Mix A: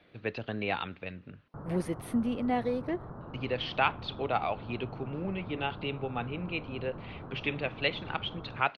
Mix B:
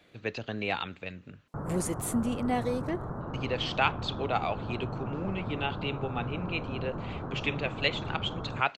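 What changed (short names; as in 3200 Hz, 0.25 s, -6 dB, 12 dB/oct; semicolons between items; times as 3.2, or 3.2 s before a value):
background +7.0 dB; master: remove running mean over 6 samples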